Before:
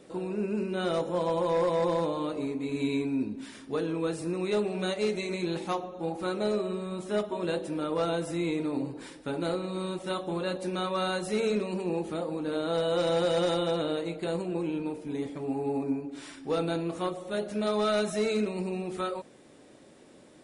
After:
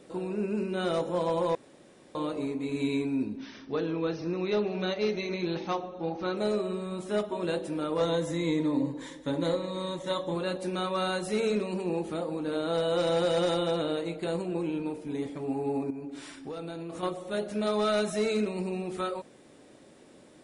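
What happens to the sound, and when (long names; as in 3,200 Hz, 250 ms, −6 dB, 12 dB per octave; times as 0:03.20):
0:01.55–0:02.15: fill with room tone
0:03.37–0:06.37: linear-phase brick-wall low-pass 6,400 Hz
0:08.00–0:10.35: EQ curve with evenly spaced ripples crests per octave 1.1, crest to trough 10 dB
0:15.90–0:17.03: downward compressor 10 to 1, threshold −34 dBFS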